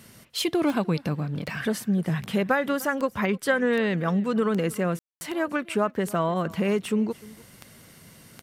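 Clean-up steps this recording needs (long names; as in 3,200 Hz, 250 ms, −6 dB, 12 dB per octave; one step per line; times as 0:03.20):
click removal
ambience match 0:04.99–0:05.21
echo removal 300 ms −21.5 dB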